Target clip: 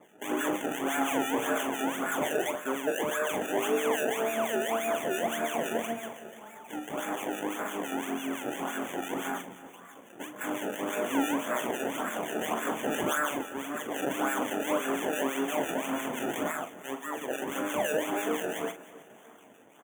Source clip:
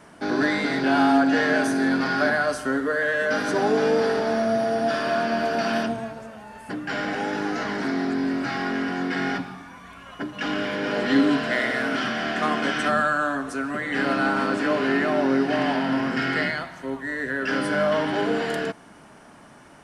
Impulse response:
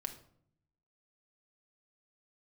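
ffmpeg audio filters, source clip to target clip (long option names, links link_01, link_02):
-filter_complex "[0:a]asettb=1/sr,asplit=3[link_01][link_02][link_03];[link_01]atrim=end=12.894[link_04];[link_02]atrim=start=12.89:end=13.43,asetpts=PTS-STARTPTS,afade=type=in:duration=0.004:curve=qsin,afade=type=out:start_time=0.536:duration=0.004:curve=qsin,equalizer=frequency=4900:width=0.6:gain=13.5[link_05];[link_03]atrim=start=13.426[link_06];[link_04][link_05]acrossfade=duration=0.004:curve1=hsin:curve2=qsin[link_07];[link_07][link_06]acrossfade=duration=0.004:curve1=qsin:curve2=hsin,asplit=2[link_08][link_09];[link_09]aeval=exprs='0.112*(abs(mod(val(0)/0.112+3,4)-2)-1)':channel_layout=same,volume=-4dB[link_10];[link_08][link_10]amix=inputs=2:normalize=0,acrusher=samples=28:mix=1:aa=0.000001:lfo=1:lforange=28:lforate=1.8,highpass=290,acrossover=split=1500[link_11][link_12];[link_11]aeval=exprs='val(0)*(1-0.7/2+0.7/2*cos(2*PI*5.9*n/s))':channel_layout=same[link_13];[link_12]aeval=exprs='val(0)*(1-0.7/2-0.7/2*cos(2*PI*5.9*n/s))':channel_layout=same[link_14];[link_13][link_14]amix=inputs=2:normalize=0,asuperstop=centerf=4600:order=20:qfactor=1.9,asplit=2[link_15][link_16];[link_16]adelay=43,volume=-11dB[link_17];[link_15][link_17]amix=inputs=2:normalize=0,aecho=1:1:313|626|939|1252:0.112|0.0572|0.0292|0.0149,volume=-6.5dB"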